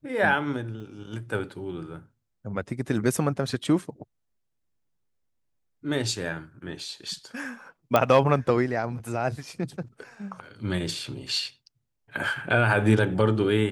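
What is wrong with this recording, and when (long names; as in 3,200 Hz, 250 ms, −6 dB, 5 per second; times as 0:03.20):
0:00.80: drop-out 2.3 ms
0:07.96: click −7 dBFS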